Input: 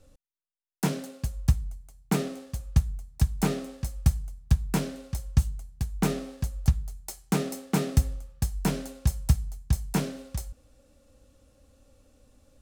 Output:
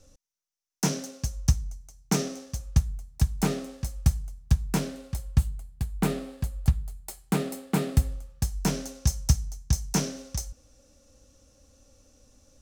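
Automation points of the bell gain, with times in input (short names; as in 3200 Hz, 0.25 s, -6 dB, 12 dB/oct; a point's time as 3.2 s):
bell 5900 Hz 0.48 oct
2.4 s +14 dB
2.89 s +4 dB
4.81 s +4 dB
5.42 s -5.5 dB
7.9 s -5.5 dB
8.51 s +6.5 dB
9.06 s +14.5 dB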